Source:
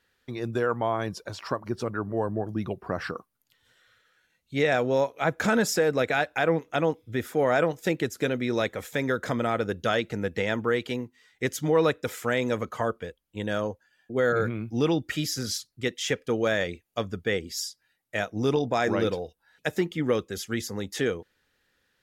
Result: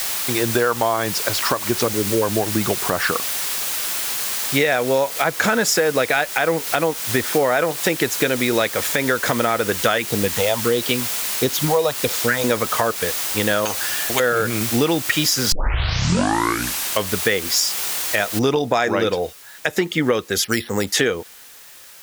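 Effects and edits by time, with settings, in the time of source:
1.88–2.22 spectral gain 580–4000 Hz -28 dB
6.41–7.57 air absorption 72 m
9.98–12.44 phaser stages 4, 1.5 Hz, lowest notch 250–2100 Hz
13.65–14.2 spectral compressor 4:1
15.52 tape start 1.60 s
18.39 noise floor step -42 dB -61 dB
20.44–20.87 careless resampling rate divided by 6×, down filtered, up hold
whole clip: low shelf 410 Hz -9.5 dB; compressor, threshold -33 dBFS; maximiser +21.5 dB; gain -3.5 dB

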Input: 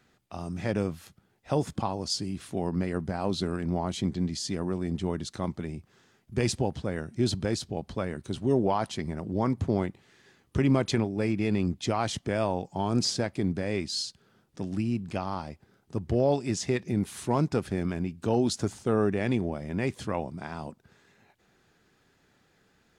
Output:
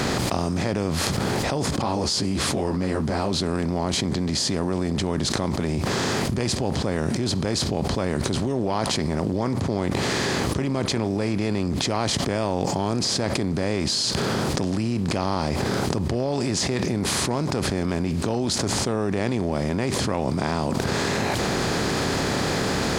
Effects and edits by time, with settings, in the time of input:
1.82–3.32 ensemble effect
whole clip: per-bin compression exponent 0.6; fast leveller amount 100%; gain -5.5 dB

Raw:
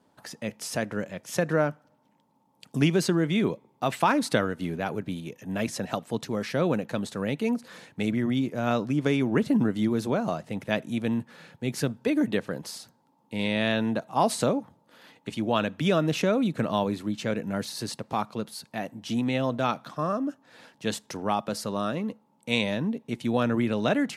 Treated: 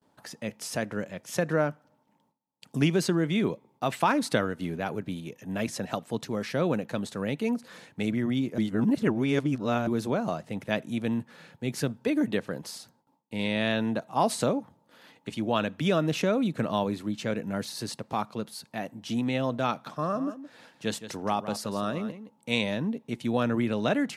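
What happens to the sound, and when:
8.58–9.87 reverse
19.7–22.51 echo 0.168 s -12 dB
whole clip: gate with hold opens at -56 dBFS; gain -1.5 dB

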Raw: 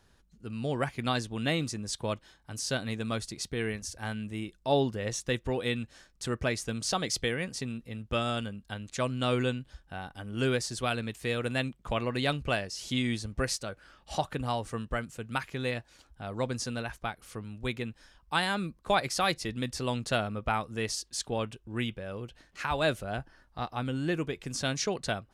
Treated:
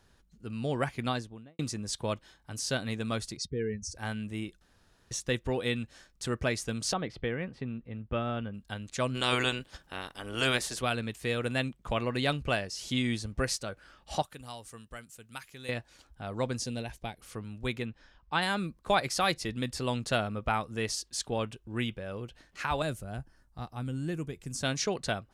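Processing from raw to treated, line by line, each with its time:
0.95–1.59 studio fade out
3.37–3.95 spectral contrast raised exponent 2
4.61–5.11 room tone
6.93–8.54 air absorption 490 m
9.14–10.8 spectral limiter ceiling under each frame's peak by 18 dB
14.22–15.69 pre-emphasis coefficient 0.8
16.59–17.21 bell 1300 Hz -14 dB 0.8 oct
17.85–18.42 air absorption 130 m
19.53–19.95 notch 5900 Hz
22.82–24.63 EQ curve 140 Hz 0 dB, 530 Hz -8 dB, 3600 Hz -10 dB, 7700 Hz +1 dB

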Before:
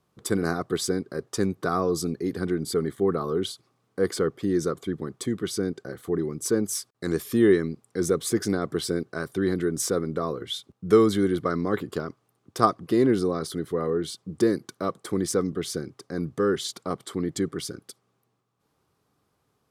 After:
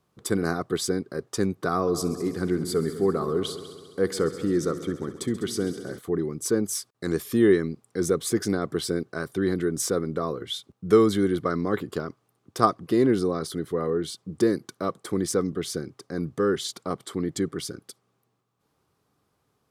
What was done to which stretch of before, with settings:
1.74–5.99 multi-head echo 67 ms, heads all three, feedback 58%, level -18 dB

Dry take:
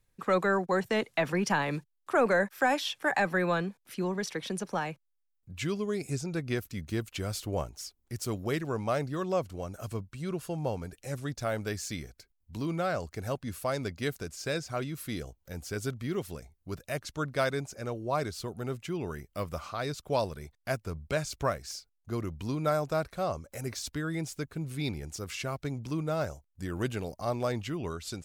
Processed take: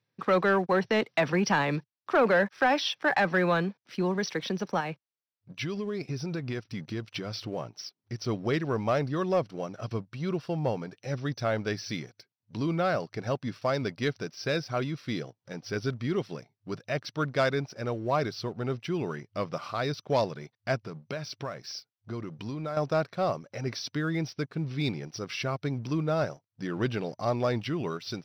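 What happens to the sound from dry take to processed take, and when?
4.8–8.26 compressor, threshold -32 dBFS
20.79–22.77 compressor 5:1, threshold -35 dBFS
whole clip: FFT band-pass 100–6000 Hz; sample leveller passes 1

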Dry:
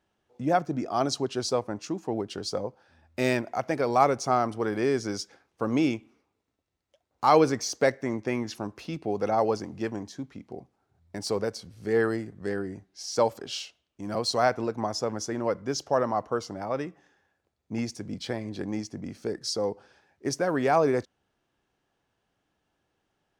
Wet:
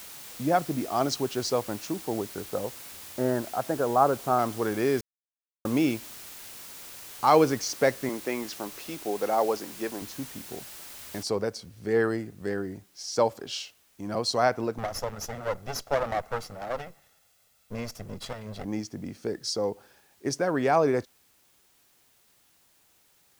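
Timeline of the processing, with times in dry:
1.93–4.39 elliptic low-pass 1600 Hz
5.01–5.65 mute
8.09–10.02 HPF 280 Hz
11.23 noise floor step -44 dB -64 dB
14.78–18.65 minimum comb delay 1.5 ms

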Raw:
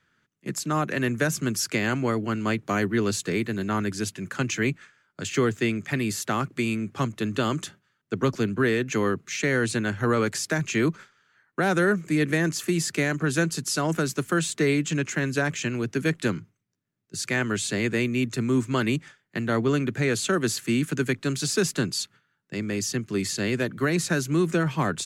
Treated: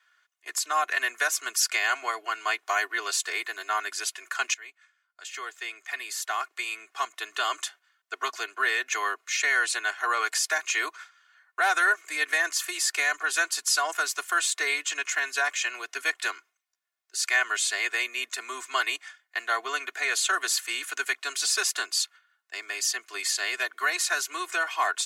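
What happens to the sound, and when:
4.54–7.62 fade in linear, from -20 dB
whole clip: HPF 750 Hz 24 dB/oct; comb 2.8 ms, depth 93%; gain +1 dB

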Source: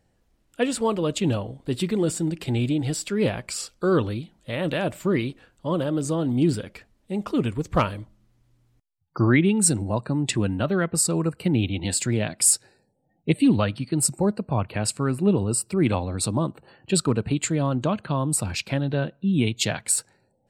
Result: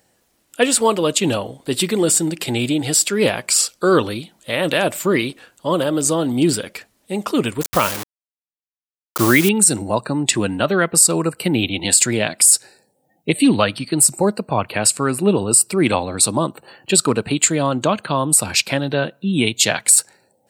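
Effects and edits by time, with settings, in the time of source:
7.61–9.49 requantised 6-bit, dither none
whole clip: HPF 410 Hz 6 dB/oct; high shelf 6200 Hz +11 dB; maximiser +10.5 dB; gain -1 dB

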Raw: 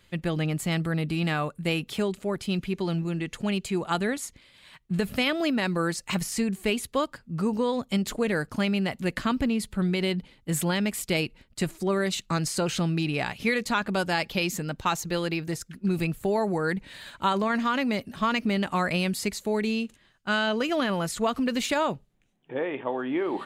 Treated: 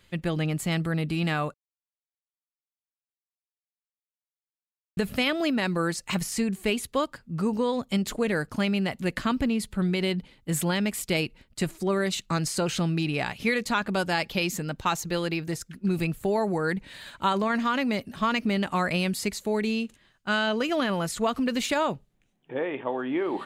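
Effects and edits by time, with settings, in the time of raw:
1.54–4.97 mute

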